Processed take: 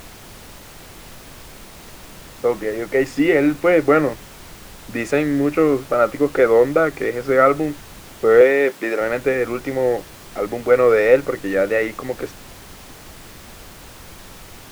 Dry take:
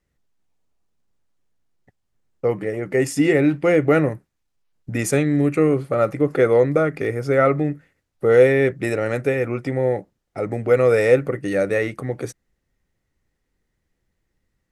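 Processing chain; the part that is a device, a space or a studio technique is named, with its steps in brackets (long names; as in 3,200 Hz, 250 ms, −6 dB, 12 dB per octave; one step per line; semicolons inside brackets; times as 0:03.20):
horn gramophone (band-pass filter 240–3,900 Hz; parametric band 1,200 Hz +4 dB; tape wow and flutter; pink noise bed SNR 20 dB)
0:08.41–0:09.01: high-pass filter 260 Hz 12 dB per octave
level +2 dB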